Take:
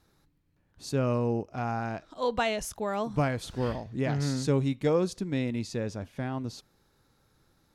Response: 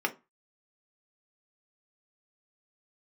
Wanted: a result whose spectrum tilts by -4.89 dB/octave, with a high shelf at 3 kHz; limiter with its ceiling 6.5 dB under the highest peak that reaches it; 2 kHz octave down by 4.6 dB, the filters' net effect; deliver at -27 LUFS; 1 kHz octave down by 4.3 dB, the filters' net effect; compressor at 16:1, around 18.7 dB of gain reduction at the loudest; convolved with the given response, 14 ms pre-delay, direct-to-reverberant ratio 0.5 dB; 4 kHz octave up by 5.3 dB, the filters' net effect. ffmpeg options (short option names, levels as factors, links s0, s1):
-filter_complex "[0:a]equalizer=f=1000:t=o:g=-5,equalizer=f=2000:t=o:g=-7.5,highshelf=f=3000:g=3,equalizer=f=4000:t=o:g=6.5,acompressor=threshold=0.01:ratio=16,alimiter=level_in=3.98:limit=0.0631:level=0:latency=1,volume=0.251,asplit=2[s0][s1];[1:a]atrim=start_sample=2205,adelay=14[s2];[s1][s2]afir=irnorm=-1:irlink=0,volume=0.355[s3];[s0][s3]amix=inputs=2:normalize=0,volume=7.94"